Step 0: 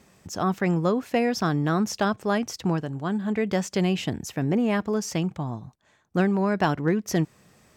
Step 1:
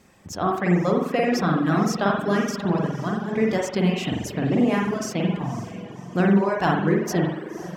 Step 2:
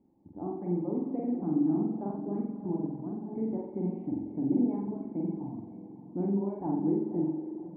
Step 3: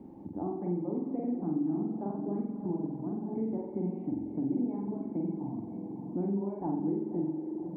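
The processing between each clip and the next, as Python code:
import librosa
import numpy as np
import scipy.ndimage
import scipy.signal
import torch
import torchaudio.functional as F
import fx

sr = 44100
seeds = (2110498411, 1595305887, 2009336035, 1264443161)

y1 = fx.echo_diffused(x, sr, ms=549, feedback_pct=47, wet_db=-12.5)
y1 = fx.rev_spring(y1, sr, rt60_s=1.2, pass_ms=(45,), chirp_ms=50, drr_db=-3.0)
y1 = fx.dereverb_blind(y1, sr, rt60_s=0.75)
y2 = fx.formant_cascade(y1, sr, vowel='u')
y2 = fx.echo_stepped(y2, sr, ms=105, hz=260.0, octaves=1.4, feedback_pct=70, wet_db=-7.5)
y2 = y2 * librosa.db_to_amplitude(-1.0)
y3 = fx.band_squash(y2, sr, depth_pct=70)
y3 = y3 * librosa.db_to_amplitude(-2.0)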